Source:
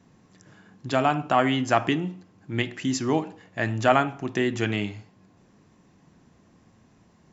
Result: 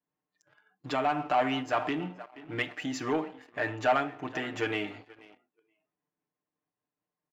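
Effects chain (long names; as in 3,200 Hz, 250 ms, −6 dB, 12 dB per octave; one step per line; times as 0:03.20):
downward compressor 1.5 to 1, threshold −28 dBFS, peak gain reduction 5.5 dB
comb filter 6.7 ms, depth 73%
pitch vibrato 1.3 Hz 9 cents
on a send: tape delay 478 ms, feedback 36%, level −18 dB, low-pass 2,800 Hz
on the sum: noise reduction from a noise print of the clip's start 18 dB
leveller curve on the samples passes 2
bass and treble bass −14 dB, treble −11 dB
amplitude modulation by smooth noise, depth 50%
level −5.5 dB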